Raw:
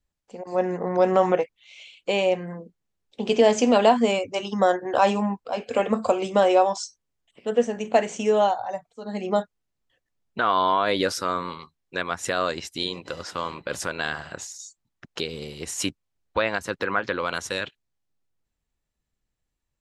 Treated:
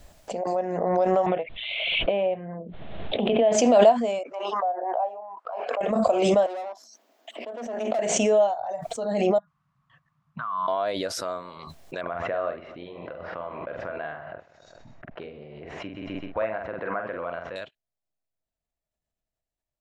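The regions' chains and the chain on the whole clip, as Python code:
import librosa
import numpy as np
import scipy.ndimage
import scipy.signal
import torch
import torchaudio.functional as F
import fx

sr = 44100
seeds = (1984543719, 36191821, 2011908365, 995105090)

y = fx.chain(x, sr, fx.steep_lowpass(hz=3700.0, slope=72),
    fx.low_shelf(hz=230.0, db=8.0),
    fx.band_squash(depth_pct=100), at=(1.26, 3.52))
y = fx.chain(y, sr, fx.highpass(hz=280.0, slope=24),
    fx.auto_wah(base_hz=740.0, top_hz=1500.0, q=4.4, full_db=-19.5, direction='down'), at=(4.23, 5.81))
y = fx.chain(y, sr, fx.peak_eq(hz=9300.0, db=-12.0, octaves=0.72),
    fx.tube_stage(drive_db=25.0, bias=0.7),
    fx.cheby_ripple_highpass(hz=220.0, ripple_db=3), at=(6.46, 7.99))
y = fx.chain(y, sr, fx.double_bandpass(hz=410.0, octaves=2.9),
    fx.peak_eq(hz=650.0, db=-12.0, octaves=0.88), at=(9.38, 10.68))
y = fx.chain(y, sr, fx.lowpass(hz=2300.0, slope=24),
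    fx.doubler(ms=46.0, db=-6),
    fx.echo_feedback(ms=128, feedback_pct=32, wet_db=-20), at=(12.01, 17.56))
y = fx.peak_eq(y, sr, hz=650.0, db=14.5, octaves=0.41)
y = fx.pre_swell(y, sr, db_per_s=29.0)
y = y * librosa.db_to_amplitude(-11.0)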